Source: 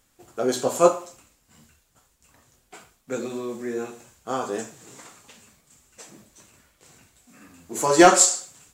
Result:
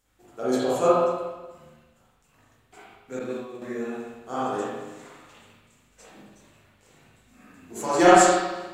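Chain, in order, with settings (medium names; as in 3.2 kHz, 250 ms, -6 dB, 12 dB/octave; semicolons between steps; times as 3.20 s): spring tank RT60 1.2 s, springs 39/58 ms, chirp 25 ms, DRR -8.5 dB; 3.19–3.62 s: expander -18 dBFS; trim -9 dB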